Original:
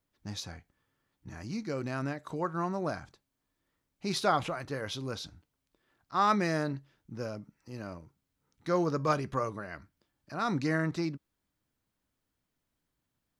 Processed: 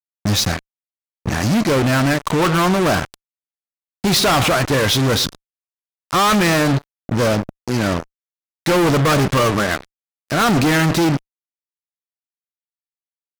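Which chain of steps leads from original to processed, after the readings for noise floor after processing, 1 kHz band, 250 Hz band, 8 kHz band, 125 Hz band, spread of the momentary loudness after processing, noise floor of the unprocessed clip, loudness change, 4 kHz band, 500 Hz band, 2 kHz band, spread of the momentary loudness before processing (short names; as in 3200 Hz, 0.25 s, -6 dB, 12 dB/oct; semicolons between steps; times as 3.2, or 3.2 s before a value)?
under -85 dBFS, +13.5 dB, +16.5 dB, +23.0 dB, +18.0 dB, 9 LU, -83 dBFS, +16.0 dB, +21.5 dB, +15.5 dB, +18.5 dB, 17 LU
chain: outdoor echo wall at 19 m, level -21 dB; fuzz box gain 46 dB, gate -46 dBFS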